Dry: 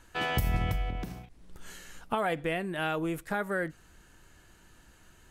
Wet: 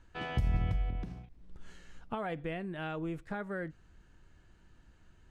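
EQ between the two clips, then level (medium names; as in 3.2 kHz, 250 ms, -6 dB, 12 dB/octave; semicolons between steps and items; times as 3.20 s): distance through air 87 m; bass shelf 250 Hz +8.5 dB; -8.5 dB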